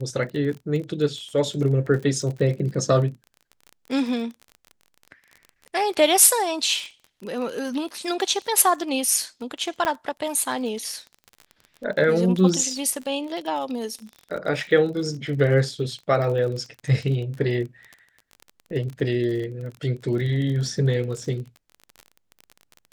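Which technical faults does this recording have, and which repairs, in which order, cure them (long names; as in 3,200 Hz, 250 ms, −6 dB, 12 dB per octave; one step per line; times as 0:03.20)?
surface crackle 32 per second −31 dBFS
0:09.85: click −11 dBFS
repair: click removal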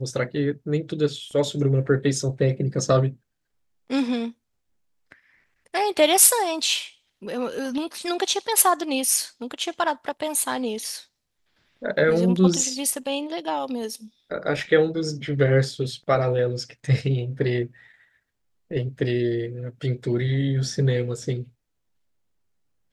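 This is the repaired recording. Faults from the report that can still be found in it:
none of them is left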